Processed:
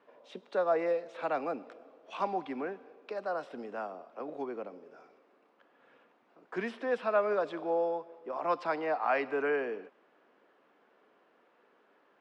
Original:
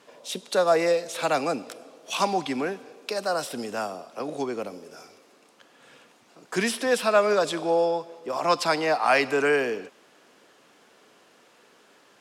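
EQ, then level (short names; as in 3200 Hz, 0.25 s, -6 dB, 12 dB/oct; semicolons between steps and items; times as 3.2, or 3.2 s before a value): HPF 230 Hz 12 dB/oct; LPF 1800 Hz 12 dB/oct; -7.5 dB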